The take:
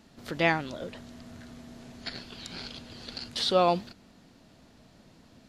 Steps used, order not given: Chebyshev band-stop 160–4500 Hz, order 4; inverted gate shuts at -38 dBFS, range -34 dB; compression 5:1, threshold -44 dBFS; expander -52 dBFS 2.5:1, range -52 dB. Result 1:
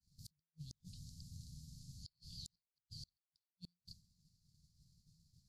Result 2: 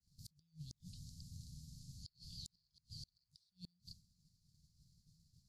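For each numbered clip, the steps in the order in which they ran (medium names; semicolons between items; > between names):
Chebyshev band-stop > compression > inverted gate > expander; Chebyshev band-stop > compression > expander > inverted gate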